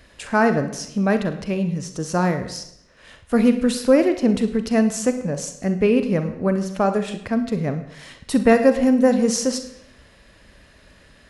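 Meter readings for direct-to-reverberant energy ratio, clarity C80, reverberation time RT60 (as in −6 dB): 8.0 dB, 13.0 dB, 0.80 s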